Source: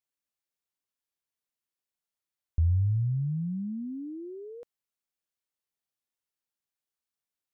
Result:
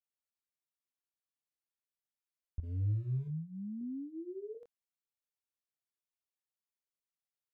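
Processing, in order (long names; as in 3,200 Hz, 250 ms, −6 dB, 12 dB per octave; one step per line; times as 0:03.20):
0:02.63–0:03.28: leveller curve on the samples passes 1
0:03.81–0:04.55: parametric band 470 Hz +8.5 dB 1.3 octaves
chorus effect 0.73 Hz, delay 18 ms, depth 8 ms
level −6.5 dB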